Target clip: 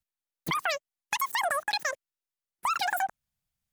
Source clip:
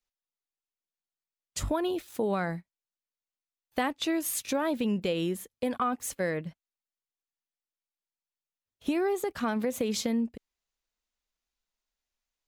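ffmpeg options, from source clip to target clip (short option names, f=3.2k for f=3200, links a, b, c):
-filter_complex "[0:a]asplit=2[a][b];[b]acompressor=threshold=-36dB:ratio=6,volume=-2.5dB[c];[a][c]amix=inputs=2:normalize=0,asetrate=147735,aresample=44100,volume=-1dB"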